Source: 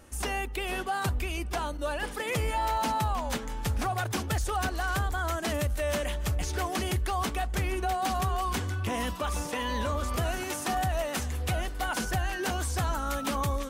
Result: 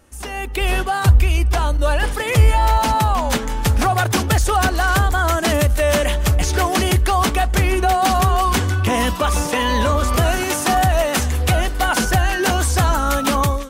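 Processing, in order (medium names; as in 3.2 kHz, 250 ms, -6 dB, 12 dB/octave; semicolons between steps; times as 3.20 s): 0.61–2.95 s: resonant low shelf 140 Hz +8 dB, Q 1.5; level rider gain up to 13 dB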